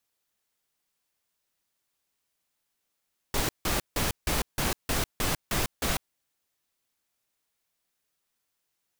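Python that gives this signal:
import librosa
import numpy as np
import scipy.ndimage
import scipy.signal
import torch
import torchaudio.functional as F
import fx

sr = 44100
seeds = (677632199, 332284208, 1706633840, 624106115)

y = fx.noise_burst(sr, seeds[0], colour='pink', on_s=0.15, off_s=0.16, bursts=9, level_db=-27.0)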